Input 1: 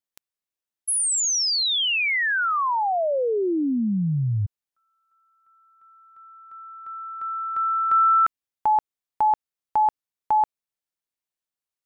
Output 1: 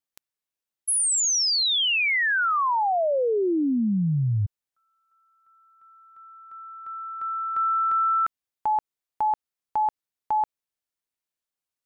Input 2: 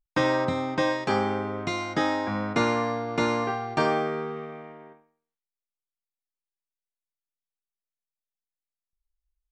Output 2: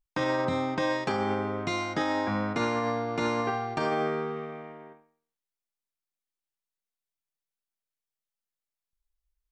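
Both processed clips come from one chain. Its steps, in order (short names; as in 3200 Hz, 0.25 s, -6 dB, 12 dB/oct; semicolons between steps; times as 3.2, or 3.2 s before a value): limiter -19 dBFS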